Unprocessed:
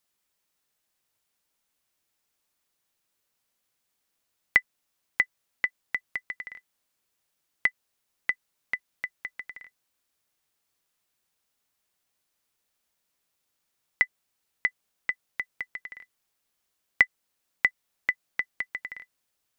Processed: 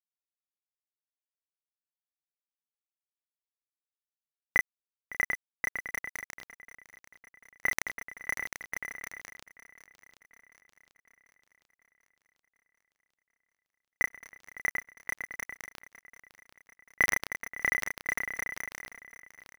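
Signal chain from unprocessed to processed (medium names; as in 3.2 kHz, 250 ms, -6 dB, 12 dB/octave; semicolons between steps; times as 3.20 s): low-pass 1.4 kHz 12 dB/octave; dynamic bell 1 kHz, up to -3 dB, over -55 dBFS, Q 4.6; small samples zeroed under -31 dBFS; doubling 31 ms -2.5 dB; shuffle delay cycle 742 ms, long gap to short 3:1, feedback 54%, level -17.5 dB; decay stretcher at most 39 dB/s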